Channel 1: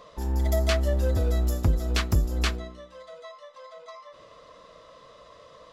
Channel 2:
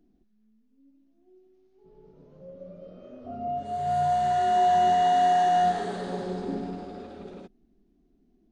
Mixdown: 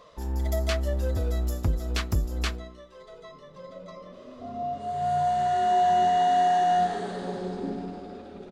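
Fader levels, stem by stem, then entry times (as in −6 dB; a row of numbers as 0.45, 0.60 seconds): −3.0, −0.5 decibels; 0.00, 1.15 seconds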